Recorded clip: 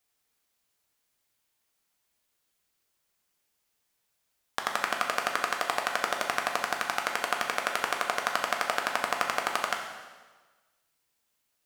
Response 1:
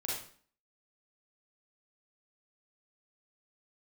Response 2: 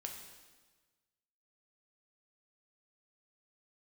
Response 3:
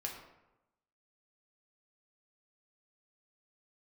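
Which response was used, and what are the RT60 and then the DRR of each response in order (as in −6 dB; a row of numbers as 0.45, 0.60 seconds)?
2; 0.50, 1.4, 0.95 seconds; −5.5, 1.5, −1.0 decibels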